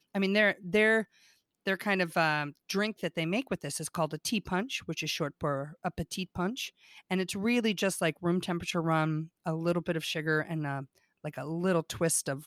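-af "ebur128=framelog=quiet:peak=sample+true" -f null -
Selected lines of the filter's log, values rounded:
Integrated loudness:
  I:         -30.9 LUFS
  Threshold: -41.1 LUFS
Loudness range:
  LRA:         3.6 LU
  Threshold: -51.7 LUFS
  LRA low:   -33.7 LUFS
  LRA high:  -30.1 LUFS
Sample peak:
  Peak:      -13.8 dBFS
True peak:
  Peak:      -13.7 dBFS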